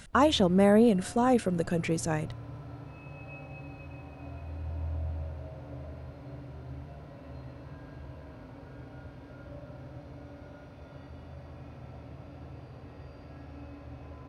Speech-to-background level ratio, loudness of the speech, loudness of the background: 18.5 dB, -25.5 LUFS, -44.0 LUFS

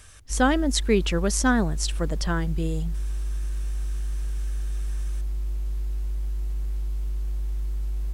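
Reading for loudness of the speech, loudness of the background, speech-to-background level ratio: -25.0 LUFS, -31.5 LUFS, 6.5 dB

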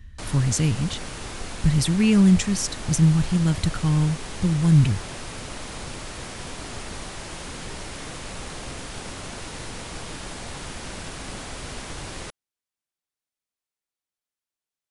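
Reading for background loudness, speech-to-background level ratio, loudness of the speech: -35.0 LUFS, 14.0 dB, -21.0 LUFS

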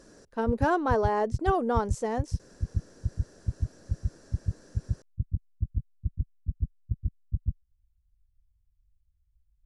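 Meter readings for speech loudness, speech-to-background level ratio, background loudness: -28.0 LUFS, 7.5 dB, -35.5 LUFS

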